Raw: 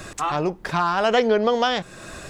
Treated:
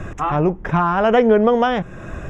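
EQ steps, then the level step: running mean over 10 samples; low shelf 190 Hz +11 dB; +3.5 dB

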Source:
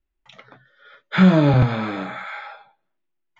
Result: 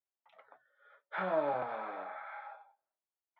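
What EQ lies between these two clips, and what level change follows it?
ladder band-pass 870 Hz, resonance 35%; 0.0 dB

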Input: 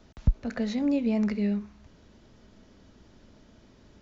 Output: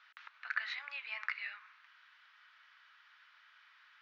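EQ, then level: steep high-pass 1300 Hz 36 dB/oct; air absorption 310 m; high shelf 4400 Hz -11 dB; +11.5 dB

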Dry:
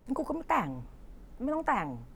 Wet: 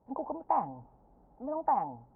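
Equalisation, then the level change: HPF 59 Hz 12 dB/oct; synth low-pass 820 Hz, resonance Q 4.9; -8.5 dB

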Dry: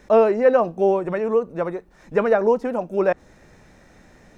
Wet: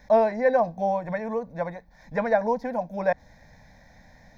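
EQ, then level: fixed phaser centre 1900 Hz, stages 8; 0.0 dB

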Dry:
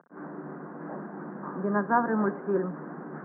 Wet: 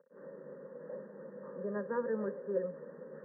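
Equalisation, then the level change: vocal tract filter e; fixed phaser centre 480 Hz, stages 8; +6.5 dB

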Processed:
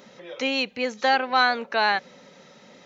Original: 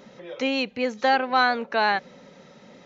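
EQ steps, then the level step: tilt +1.5 dB/oct; 0.0 dB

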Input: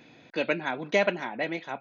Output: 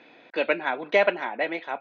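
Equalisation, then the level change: BPF 400–6300 Hz; air absorption 190 m; +5.5 dB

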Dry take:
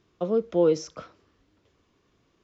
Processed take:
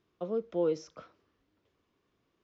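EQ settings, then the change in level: air absorption 73 m; low shelf 140 Hz -5.5 dB; -7.5 dB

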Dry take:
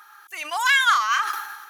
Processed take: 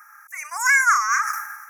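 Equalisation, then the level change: dynamic EQ 6600 Hz, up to +6 dB, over -42 dBFS, Q 1.3; HPF 1100 Hz 24 dB/oct; elliptic band-stop 2200–5500 Hz, stop band 50 dB; +3.0 dB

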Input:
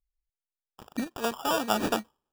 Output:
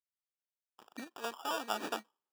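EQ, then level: HPF 370 Hz 12 dB/oct; bell 560 Hz -4 dB 0.88 oct; high shelf 7300 Hz -5.5 dB; -7.0 dB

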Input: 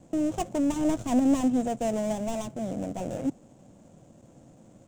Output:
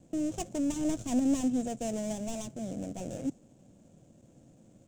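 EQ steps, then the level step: notch 2000 Hz, Q 26; dynamic EQ 6500 Hz, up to +5 dB, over -55 dBFS, Q 0.97; bell 1000 Hz -7.5 dB 1.3 oct; -4.0 dB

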